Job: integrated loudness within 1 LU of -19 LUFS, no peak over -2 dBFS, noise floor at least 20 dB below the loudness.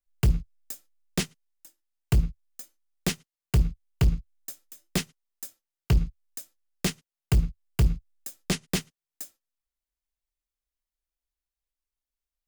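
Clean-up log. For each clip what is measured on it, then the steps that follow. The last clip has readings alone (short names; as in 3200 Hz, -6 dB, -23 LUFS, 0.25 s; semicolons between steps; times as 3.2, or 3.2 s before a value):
clipped 1.1%; flat tops at -15.0 dBFS; loudness -29.0 LUFS; peak -15.0 dBFS; loudness target -19.0 LUFS
-> clip repair -15 dBFS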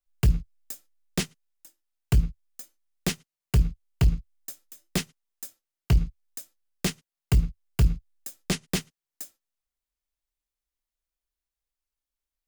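clipped 0.0%; loudness -28.5 LUFS; peak -10.5 dBFS; loudness target -19.0 LUFS
-> gain +9.5 dB; limiter -2 dBFS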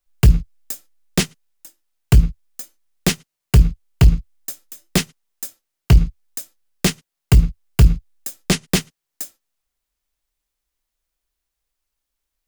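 loudness -19.0 LUFS; peak -2.0 dBFS; noise floor -81 dBFS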